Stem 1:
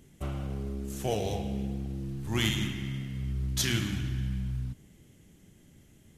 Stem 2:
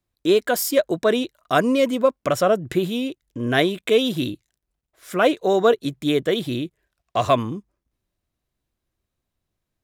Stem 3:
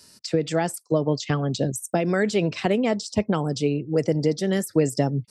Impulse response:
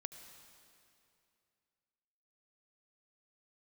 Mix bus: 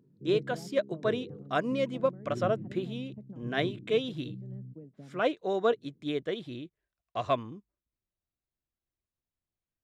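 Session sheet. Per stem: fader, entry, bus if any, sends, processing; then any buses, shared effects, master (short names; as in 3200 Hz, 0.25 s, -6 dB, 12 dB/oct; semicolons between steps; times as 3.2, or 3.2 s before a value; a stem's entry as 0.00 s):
0.0 dB, 0.00 s, no send, FFT band-pass 100–520 Hz; random-step tremolo, depth 90%
-9.0 dB, 0.00 s, no send, LPF 5000 Hz 12 dB/oct
-16.0 dB, 0.00 s, no send, Bessel low-pass 720 Hz, order 2; bell 200 Hz +11.5 dB 1.4 oct; auto duck -11 dB, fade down 1.35 s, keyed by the second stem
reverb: off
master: upward expander 1.5:1, over -33 dBFS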